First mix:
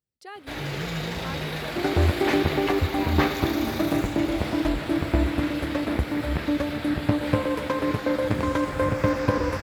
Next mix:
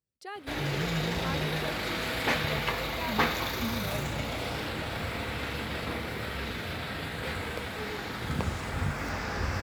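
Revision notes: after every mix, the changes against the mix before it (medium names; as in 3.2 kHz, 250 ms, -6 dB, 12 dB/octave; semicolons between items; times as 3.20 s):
second sound: muted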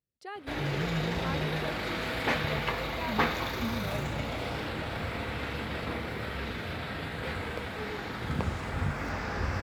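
master: add treble shelf 4.5 kHz -8.5 dB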